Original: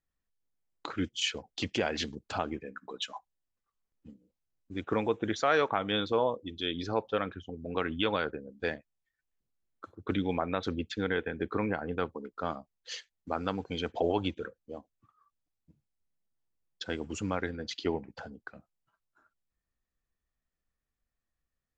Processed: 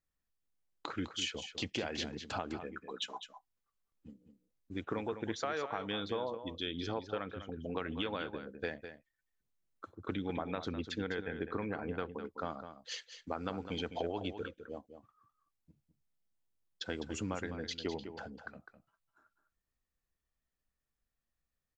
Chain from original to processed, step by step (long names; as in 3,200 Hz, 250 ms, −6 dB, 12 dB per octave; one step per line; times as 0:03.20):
downward compressor, threshold −31 dBFS, peak gain reduction 10 dB
single-tap delay 205 ms −10 dB
level −2 dB